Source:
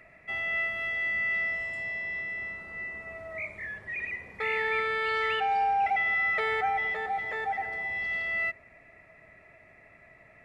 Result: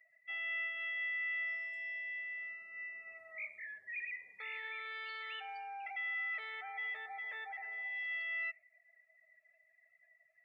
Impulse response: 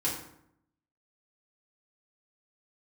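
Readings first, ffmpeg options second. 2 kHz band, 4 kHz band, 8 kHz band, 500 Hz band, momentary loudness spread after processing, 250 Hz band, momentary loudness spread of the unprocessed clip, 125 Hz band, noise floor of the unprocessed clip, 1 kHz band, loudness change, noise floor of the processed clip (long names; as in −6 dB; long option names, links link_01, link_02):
−9.5 dB, −8.5 dB, can't be measured, −24.0 dB, 9 LU, below −25 dB, 11 LU, below −30 dB, −57 dBFS, −19.0 dB, −11.0 dB, −72 dBFS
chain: -af "alimiter=level_in=1dB:limit=-24dB:level=0:latency=1:release=95,volume=-1dB,afftdn=noise_reduction=22:noise_floor=-47,aderivative,volume=3dB"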